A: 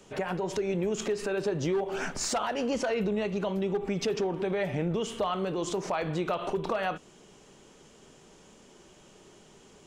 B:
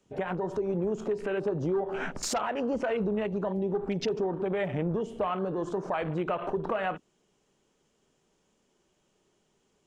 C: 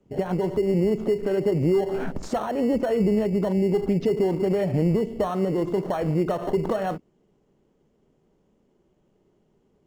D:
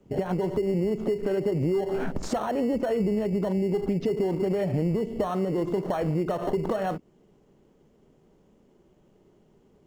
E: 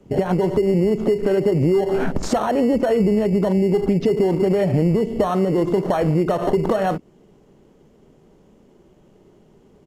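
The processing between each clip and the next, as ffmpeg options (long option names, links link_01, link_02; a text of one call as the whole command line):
ffmpeg -i in.wav -af "afwtdn=0.0112" out.wav
ffmpeg -i in.wav -filter_complex "[0:a]tiltshelf=frequency=970:gain=7.5,asplit=2[link_01][link_02];[link_02]acrusher=samples=18:mix=1:aa=0.000001,volume=-10.5dB[link_03];[link_01][link_03]amix=inputs=2:normalize=0,highshelf=frequency=4600:gain=-6" out.wav
ffmpeg -i in.wav -af "acompressor=threshold=-32dB:ratio=2.5,volume=5dB" out.wav
ffmpeg -i in.wav -af "aresample=32000,aresample=44100,volume=8dB" out.wav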